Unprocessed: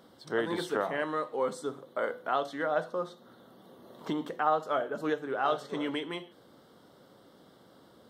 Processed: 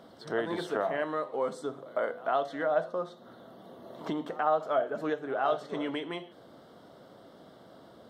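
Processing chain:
high-shelf EQ 6,200 Hz −8 dB
in parallel at +2 dB: downward compressor, threshold −41 dBFS, peak gain reduction 18 dB
on the sum: parametric band 660 Hz +8.5 dB 0.23 octaves
echo ahead of the sound 107 ms −21 dB
level −3.5 dB

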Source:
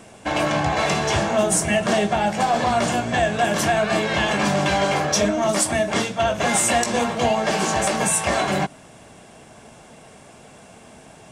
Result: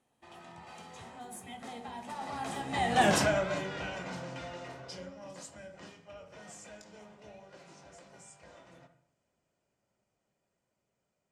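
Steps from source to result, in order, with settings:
source passing by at 0:03.07, 44 m/s, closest 5.8 metres
convolution reverb RT60 0.60 s, pre-delay 47 ms, DRR 9.5 dB
level −3.5 dB

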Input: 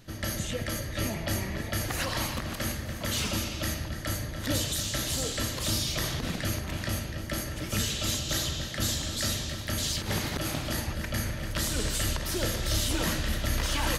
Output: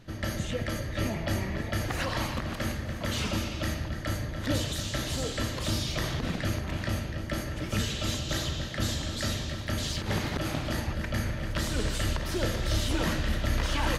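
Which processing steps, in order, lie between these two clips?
low-pass filter 2,900 Hz 6 dB per octave
level +1.5 dB

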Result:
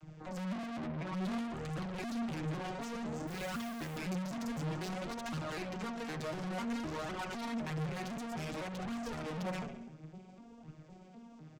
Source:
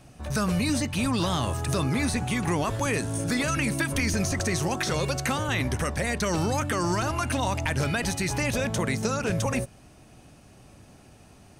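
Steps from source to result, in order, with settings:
vocoder with an arpeggio as carrier minor triad, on D#3, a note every 253 ms
0:00.63–0:01.13: Chebyshev band-pass filter 160–2,000 Hz, order 3
on a send: repeating echo 69 ms, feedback 54%, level −13 dB
on the sum: tube saturation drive 43 dB, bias 0.7
flanger 0.56 Hz, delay 0.6 ms, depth 7.7 ms, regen +39%
0:03.27–0:03.98: noise that follows the level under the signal 18 dB
level +9 dB

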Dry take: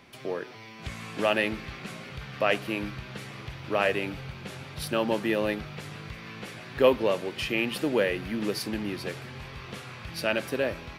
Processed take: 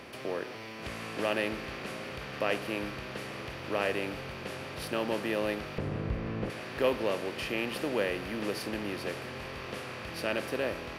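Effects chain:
compressor on every frequency bin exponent 0.6
0:05.78–0:06.50: spectral tilt −4 dB per octave
level −8.5 dB

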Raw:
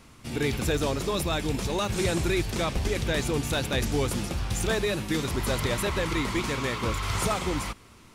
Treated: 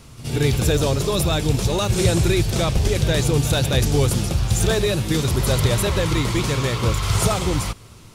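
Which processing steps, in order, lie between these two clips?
octave-band graphic EQ 125/250/1,000/2,000 Hz +6/−6/−4/−6 dB
backwards echo 75 ms −13.5 dB
level +8.5 dB

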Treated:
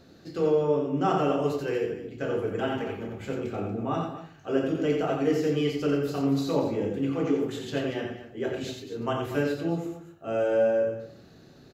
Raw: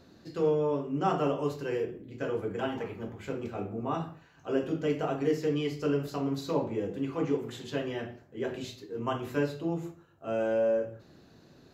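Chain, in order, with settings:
notch filter 1,000 Hz, Q 8.6
on a send: loudspeakers that aren't time-aligned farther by 10 metres −11 dB, 30 metres −5 dB, 81 metres −12 dB
on the sum: level +2.5 dB

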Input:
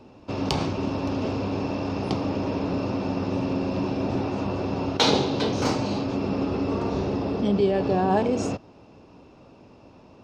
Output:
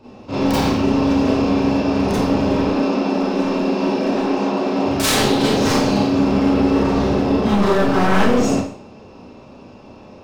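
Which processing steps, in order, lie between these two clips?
0:02.64–0:04.86: high-pass filter 210 Hz 24 dB per octave
wave folding −20.5 dBFS
four-comb reverb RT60 0.5 s, combs from 29 ms, DRR −9 dB

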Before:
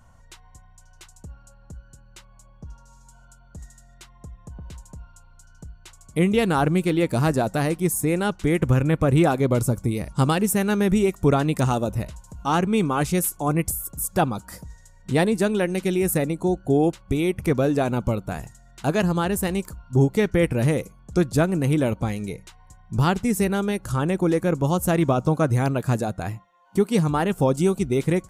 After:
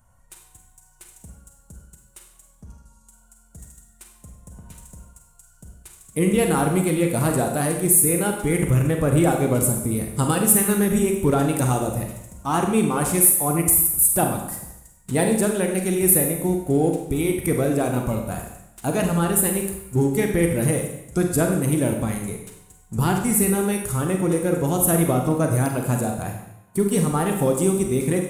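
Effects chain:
spectral magnitudes quantised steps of 15 dB
high shelf with overshoot 7,100 Hz +11 dB, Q 1.5
leveller curve on the samples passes 1
four-comb reverb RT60 0.82 s, combs from 32 ms, DRR 2.5 dB
level −5 dB

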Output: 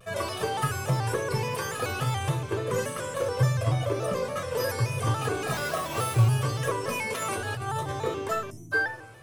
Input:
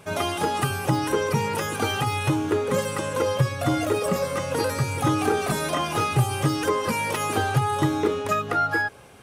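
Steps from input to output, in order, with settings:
0:03.63–0:04.36: high-shelf EQ 5,800 Hz −8 dB
convolution reverb RT60 0.90 s, pre-delay 5 ms, DRR 9.5 dB
0:05.52–0:06.28: sample-rate reduction 9,300 Hz, jitter 0%
0:07.22–0:07.92: compressor whose output falls as the input rises −24 dBFS, ratio −1
tuned comb filter 120 Hz, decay 0.33 s, harmonics all, mix 80%
0:08.51–0:08.72: time-frequency box erased 340–5,300 Hz
tuned comb filter 160 Hz, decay 0.7 s, harmonics all, mix 40%
hum removal 101.6 Hz, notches 10
pitch modulation by a square or saw wave square 3.5 Hz, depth 100 cents
level +6 dB

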